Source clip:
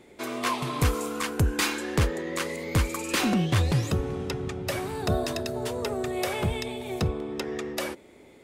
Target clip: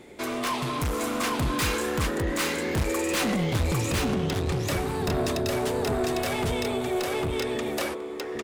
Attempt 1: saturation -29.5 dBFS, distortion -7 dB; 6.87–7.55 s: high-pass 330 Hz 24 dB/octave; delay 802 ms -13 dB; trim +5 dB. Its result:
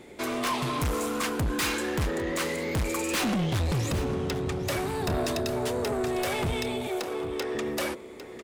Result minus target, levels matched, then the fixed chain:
echo-to-direct -11 dB
saturation -29.5 dBFS, distortion -7 dB; 6.87–7.55 s: high-pass 330 Hz 24 dB/octave; delay 802 ms -2 dB; trim +5 dB

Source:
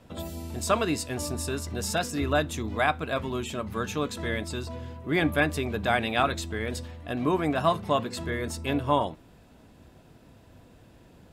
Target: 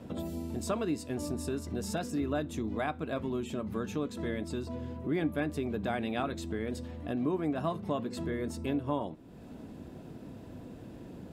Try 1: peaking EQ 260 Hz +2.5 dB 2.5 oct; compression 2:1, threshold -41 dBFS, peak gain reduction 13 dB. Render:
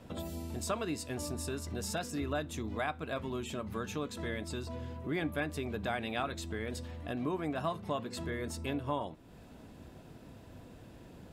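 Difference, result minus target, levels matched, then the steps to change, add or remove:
250 Hz band -2.5 dB
change: peaking EQ 260 Hz +11.5 dB 2.5 oct

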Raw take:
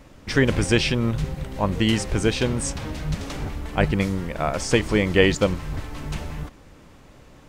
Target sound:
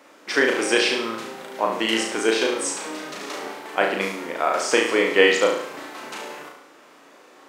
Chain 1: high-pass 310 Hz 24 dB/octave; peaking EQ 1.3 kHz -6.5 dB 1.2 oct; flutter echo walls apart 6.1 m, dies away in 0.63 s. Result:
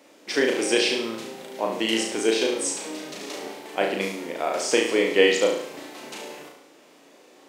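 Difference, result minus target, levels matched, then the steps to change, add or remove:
1 kHz band -4.0 dB
change: peaking EQ 1.3 kHz +3.5 dB 1.2 oct

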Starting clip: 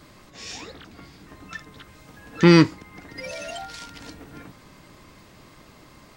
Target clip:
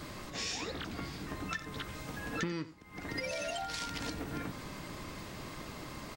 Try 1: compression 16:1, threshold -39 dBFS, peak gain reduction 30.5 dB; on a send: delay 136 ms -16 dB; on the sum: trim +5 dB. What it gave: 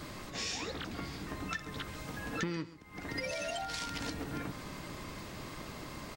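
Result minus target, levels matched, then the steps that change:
echo 45 ms late
change: delay 91 ms -16 dB

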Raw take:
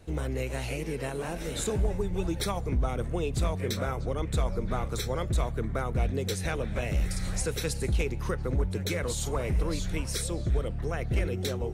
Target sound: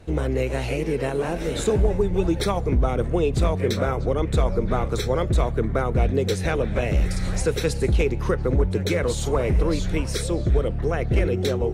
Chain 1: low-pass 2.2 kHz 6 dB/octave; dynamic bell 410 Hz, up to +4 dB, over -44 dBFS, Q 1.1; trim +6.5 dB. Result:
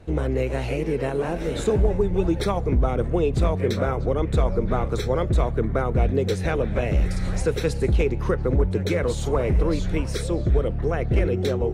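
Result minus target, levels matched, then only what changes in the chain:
4 kHz band -3.5 dB
change: low-pass 4.5 kHz 6 dB/octave

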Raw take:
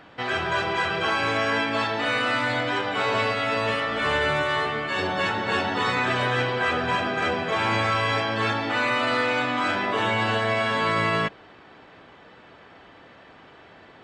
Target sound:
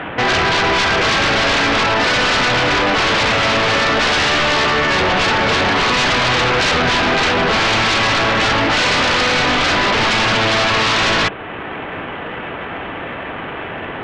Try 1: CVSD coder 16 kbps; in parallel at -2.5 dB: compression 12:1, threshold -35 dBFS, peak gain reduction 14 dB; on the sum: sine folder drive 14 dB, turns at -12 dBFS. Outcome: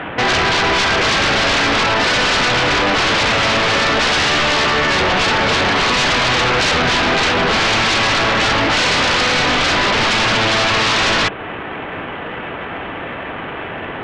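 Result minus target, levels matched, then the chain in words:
compression: peak gain reduction -7 dB
CVSD coder 16 kbps; in parallel at -2.5 dB: compression 12:1, threshold -42.5 dBFS, peak gain reduction 21 dB; on the sum: sine folder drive 14 dB, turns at -12 dBFS

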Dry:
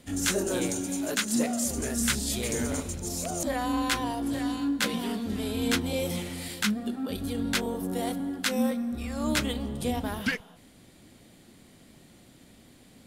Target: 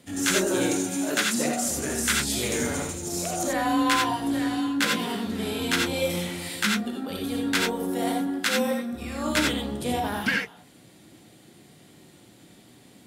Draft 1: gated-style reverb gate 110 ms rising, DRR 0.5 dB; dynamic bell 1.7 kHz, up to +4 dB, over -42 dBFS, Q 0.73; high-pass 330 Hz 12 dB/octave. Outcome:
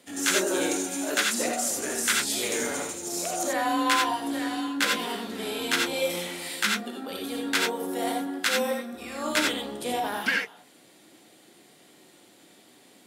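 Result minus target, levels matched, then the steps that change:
125 Hz band -11.0 dB
change: high-pass 100 Hz 12 dB/octave

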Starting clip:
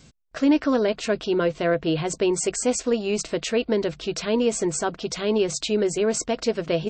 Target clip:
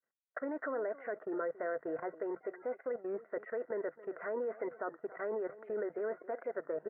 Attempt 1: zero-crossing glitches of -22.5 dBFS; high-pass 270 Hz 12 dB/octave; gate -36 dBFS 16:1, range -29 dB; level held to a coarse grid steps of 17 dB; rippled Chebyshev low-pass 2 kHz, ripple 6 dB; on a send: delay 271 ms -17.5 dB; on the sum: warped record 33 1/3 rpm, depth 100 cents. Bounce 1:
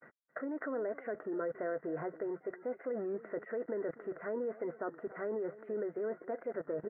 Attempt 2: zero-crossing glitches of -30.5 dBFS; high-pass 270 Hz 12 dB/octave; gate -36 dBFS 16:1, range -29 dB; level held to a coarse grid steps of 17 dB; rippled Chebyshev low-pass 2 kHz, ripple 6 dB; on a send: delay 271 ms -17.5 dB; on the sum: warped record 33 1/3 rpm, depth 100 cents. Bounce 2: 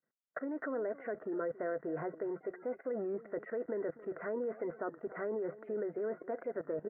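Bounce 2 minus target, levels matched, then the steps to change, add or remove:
250 Hz band +2.5 dB
change: high-pass 550 Hz 12 dB/octave

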